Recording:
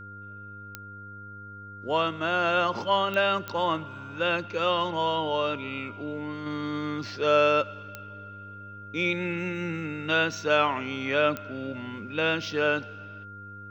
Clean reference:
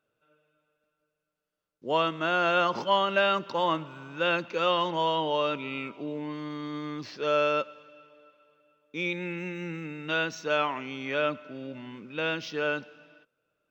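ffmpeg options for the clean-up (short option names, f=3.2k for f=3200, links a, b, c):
-af "adeclick=t=4,bandreject=f=101.2:t=h:w=4,bandreject=f=202.4:t=h:w=4,bandreject=f=303.6:t=h:w=4,bandreject=f=404.8:t=h:w=4,bandreject=f=506:t=h:w=4,bandreject=f=1.4k:w=30,asetnsamples=n=441:p=0,asendcmd='6.46 volume volume -4dB',volume=0dB"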